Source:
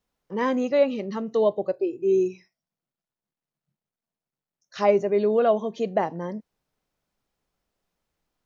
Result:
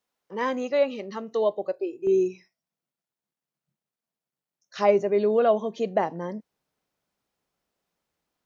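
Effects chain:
high-pass filter 470 Hz 6 dB per octave, from 0:02.07 140 Hz

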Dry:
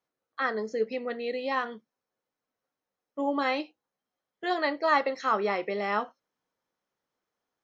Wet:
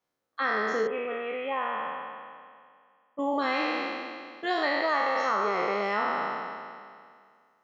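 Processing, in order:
peak hold with a decay on every bin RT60 2.10 s
downward compressor 6 to 1, threshold −23 dBFS, peak gain reduction 8 dB
0:00.87–0:03.19: Chebyshev low-pass with heavy ripple 3,400 Hz, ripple 6 dB

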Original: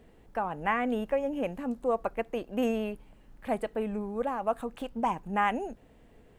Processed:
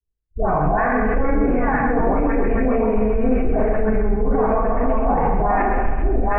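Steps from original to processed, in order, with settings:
delay that plays each chunk backwards 585 ms, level −2.5 dB
Butterworth low-pass 2,300 Hz 36 dB per octave
noise gate −48 dBFS, range −49 dB
low shelf with overshoot 130 Hz +13.5 dB, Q 1.5
reversed playback
upward compression, threshold −30 dBFS
reversed playback
all-pass dispersion highs, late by 145 ms, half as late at 1,100 Hz
formants moved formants −2 semitones
on a send: feedback echo with a high-pass in the loop 133 ms, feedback 45%, high-pass 420 Hz, level −4.5 dB
on the sum: rectangular room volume 600 cubic metres, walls furnished, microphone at 3.4 metres
boost into a limiter +21 dB
multiband upward and downward expander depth 40%
level −9 dB

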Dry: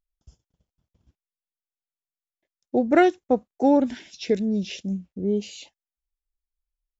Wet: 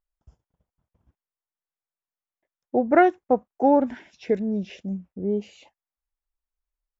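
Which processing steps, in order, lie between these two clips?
drawn EQ curve 330 Hz 0 dB, 970 Hz +7 dB, 2,000 Hz +1 dB, 4,000 Hz −12 dB
level −2 dB

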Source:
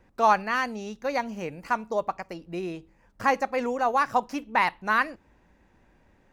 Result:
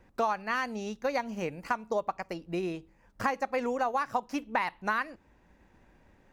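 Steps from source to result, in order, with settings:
transient designer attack +2 dB, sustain −2 dB
downward compressor 5 to 1, threshold −26 dBFS, peak gain reduction 11.5 dB

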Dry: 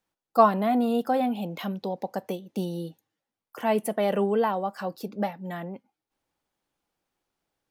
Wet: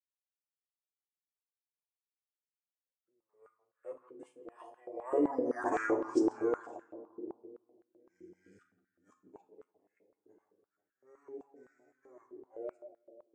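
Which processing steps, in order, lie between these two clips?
played backwards from end to start
source passing by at 0:03.27, 29 m/s, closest 2.4 metres
noise gate −56 dBFS, range −20 dB
parametric band 6,800 Hz −11.5 dB 1.3 octaves
comb filter 6.5 ms, depth 51%
on a send: tape delay 97 ms, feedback 88%, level −5 dB, low-pass 1,100 Hz
on the sum: rectangular room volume 170 cubic metres, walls furnished, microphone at 0.87 metres
wrong playback speed 78 rpm record played at 45 rpm
high-pass on a step sequencer 7.8 Hz 380–1,600 Hz

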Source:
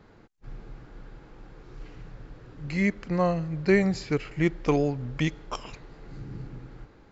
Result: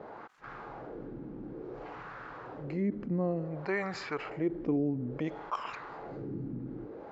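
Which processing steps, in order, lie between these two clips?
LFO wah 0.57 Hz 240–1,300 Hz, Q 2.1
envelope flattener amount 50%
level −2 dB

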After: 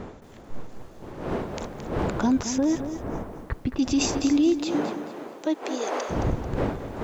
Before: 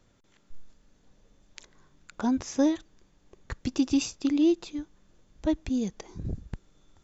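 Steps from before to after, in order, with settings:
wind on the microphone 540 Hz −40 dBFS
0:04.58–0:06.09: high-pass filter 130 Hz → 550 Hz 24 dB per octave
brickwall limiter −23 dBFS, peak gain reduction 9.5 dB
0:02.58–0:03.79: high-frequency loss of the air 460 metres
feedback echo at a low word length 220 ms, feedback 35%, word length 10 bits, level −10 dB
level +8 dB

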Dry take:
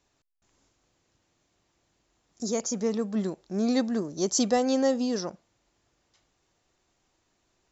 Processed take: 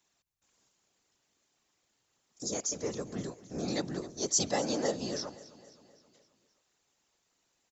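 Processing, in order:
random phases in short frames
spectral tilt +2 dB per octave
repeating echo 263 ms, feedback 55%, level −18.5 dB
level −5.5 dB

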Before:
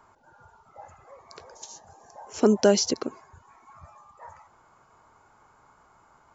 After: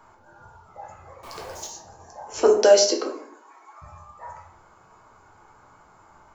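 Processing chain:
0:01.23–0:01.67: converter with a step at zero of −43 dBFS
0:02.42–0:03.82: Butterworth high-pass 330 Hz 36 dB per octave
rectangular room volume 70 cubic metres, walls mixed, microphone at 0.67 metres
level +2.5 dB

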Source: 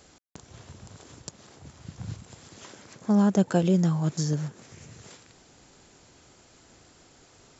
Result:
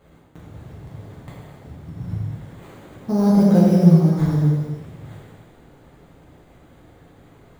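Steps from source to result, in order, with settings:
sample-rate reduction 5,400 Hz, jitter 0%
tilt shelving filter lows +7 dB
reverb whose tail is shaped and stops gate 500 ms falling, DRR −7.5 dB
level −5 dB

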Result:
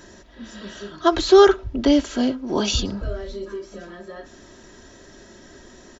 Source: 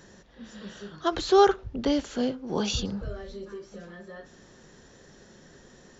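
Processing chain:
comb filter 3.1 ms, depth 55%
level +6 dB

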